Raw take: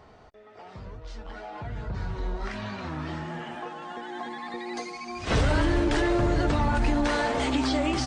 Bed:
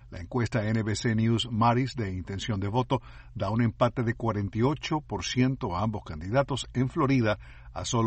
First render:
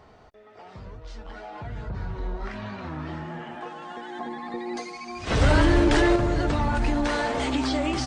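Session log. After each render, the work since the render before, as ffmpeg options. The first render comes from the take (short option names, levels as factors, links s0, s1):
-filter_complex "[0:a]asettb=1/sr,asplit=3[s0][s1][s2];[s0]atrim=end=1.894[s3];[s1]atrim=start=1.89:end=3.61,asetpts=PTS-STARTPTS,afade=t=in:d=0.004:c=qsin,afade=t=out:st=1.716:d=0.004:c=qsin,highshelf=f=3800:g=-9[s4];[s2]atrim=start=3.606[s5];[s3][s4]acrossfade=d=0.004:c1=hsin:c2=qsin[s6];[s6][s5]acrossfade=d=0.004:c1=qsin:c2=hsin,asettb=1/sr,asplit=3[s7][s8][s9];[s7]atrim=end=4.194[s10];[s8]atrim=start=4.19:end=4.77,asetpts=PTS-STARTPTS,afade=t=in:d=0.004:c=qsin,afade=t=out:st=0.576:d=0.004:c=qsin,tiltshelf=f=1100:g=5[s11];[s9]atrim=start=4.766[s12];[s10][s11]acrossfade=d=0.004:c1=hsin:c2=qsin[s13];[s13][s12]acrossfade=d=0.004:c1=qsin:c2=hsin,asettb=1/sr,asplit=3[s14][s15][s16];[s14]atrim=end=5.414[s17];[s15]atrim=start=5.41:end=6.16,asetpts=PTS-STARTPTS,afade=t=in:d=0.004:c=qsin,afade=t=out:st=0.746:d=0.004:c=qsin,acontrast=24[s18];[s16]atrim=start=6.156[s19];[s17][s18]acrossfade=d=0.004:c1=hsin:c2=qsin[s20];[s20][s19]acrossfade=d=0.004:c1=qsin:c2=hsin"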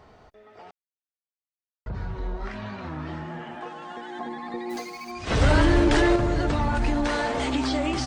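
-filter_complex "[0:a]asplit=3[s0][s1][s2];[s0]afade=t=out:st=4.69:d=0.02[s3];[s1]acrusher=bits=4:mode=log:mix=0:aa=0.000001,afade=t=in:st=4.69:d=0.02,afade=t=out:st=5.1:d=0.02[s4];[s2]afade=t=in:st=5.1:d=0.02[s5];[s3][s4][s5]amix=inputs=3:normalize=0,asplit=3[s6][s7][s8];[s6]atrim=end=0.71,asetpts=PTS-STARTPTS,afade=t=out:st=0.706:d=0.004:c=hsin[s9];[s7]atrim=start=0.71:end=1.86,asetpts=PTS-STARTPTS,volume=0[s10];[s8]atrim=start=1.86,asetpts=PTS-STARTPTS,afade=t=in:d=0.004:c=hsin[s11];[s9][s10][s11]concat=n=3:v=0:a=1"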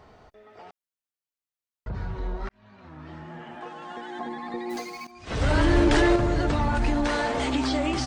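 -filter_complex "[0:a]asplit=3[s0][s1][s2];[s0]atrim=end=2.49,asetpts=PTS-STARTPTS,afade=t=out:st=2.486:d=0.004:c=hsin[s3];[s1]atrim=start=2.49:end=5.07,asetpts=PTS-STARTPTS,afade=t=in:d=1.48,afade=t=out:st=2.576:d=0.004:c=hsin:silence=0.16788[s4];[s2]atrim=start=5.07,asetpts=PTS-STARTPTS,afade=t=in:d=0.74:silence=0.16788[s5];[s3][s4][s5]concat=n=3:v=0:a=1"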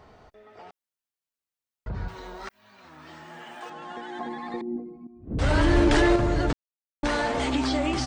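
-filter_complex "[0:a]asettb=1/sr,asplit=3[s0][s1][s2];[s0]atrim=end=2.084[s3];[s1]atrim=start=2.08:end=3.7,asetpts=PTS-STARTPTS,afade=t=in:d=0.004:c=qsin,afade=t=out:st=1.616:d=0.004:c=qsin,aemphasis=mode=production:type=riaa[s4];[s2]atrim=start=3.696[s5];[s3][s4]acrossfade=d=0.004:c1=hsin:c2=qsin[s6];[s6][s5]acrossfade=d=0.004:c1=qsin:c2=hsin,asettb=1/sr,asplit=3[s7][s8][s9];[s7]atrim=end=4.614[s10];[s8]atrim=start=4.61:end=5.39,asetpts=PTS-STARTPTS,afade=t=in:d=0.004:c=qsin,afade=t=out:st=0.776:d=0.004:c=qsin,lowpass=f=270:t=q:w=1.9[s11];[s9]atrim=start=5.386[s12];[s10][s11]acrossfade=d=0.004:c1=hsin:c2=qsin[s13];[s13][s12]acrossfade=d=0.004:c1=qsin:c2=hsin,asplit=3[s14][s15][s16];[s14]atrim=end=6.53,asetpts=PTS-STARTPTS,afade=t=out:st=6.526:d=0.004:c=hsin[s17];[s15]atrim=start=6.53:end=7.03,asetpts=PTS-STARTPTS,volume=0[s18];[s16]atrim=start=7.03,asetpts=PTS-STARTPTS,afade=t=in:d=0.004:c=hsin[s19];[s17][s18][s19]concat=n=3:v=0:a=1"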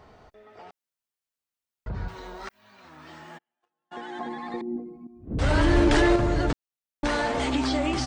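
-filter_complex "[0:a]asplit=3[s0][s1][s2];[s0]afade=t=out:st=3.37:d=0.02[s3];[s1]agate=range=0.00562:threshold=0.02:ratio=16:release=100:detection=peak,afade=t=in:st=3.37:d=0.02,afade=t=out:st=3.91:d=0.02[s4];[s2]afade=t=in:st=3.91:d=0.02[s5];[s3][s4][s5]amix=inputs=3:normalize=0"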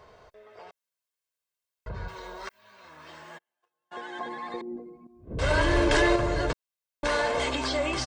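-af "lowshelf=f=230:g=-8,aecho=1:1:1.9:0.5"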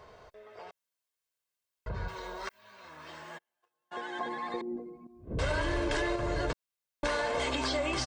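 -af "acompressor=threshold=0.0447:ratio=12"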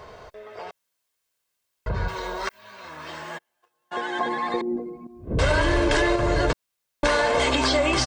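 -af "volume=3.16"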